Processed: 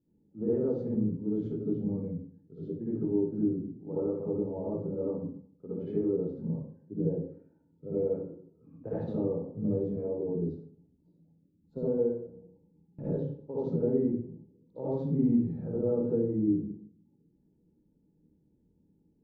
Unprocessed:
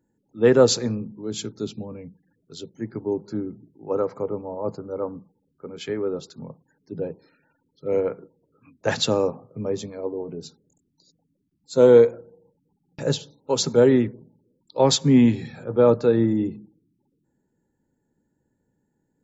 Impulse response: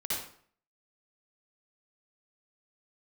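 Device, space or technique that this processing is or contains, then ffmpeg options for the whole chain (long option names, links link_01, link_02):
television next door: -filter_complex "[0:a]acompressor=threshold=-28dB:ratio=4,lowpass=360[link_01];[1:a]atrim=start_sample=2205[link_02];[link_01][link_02]afir=irnorm=-1:irlink=0"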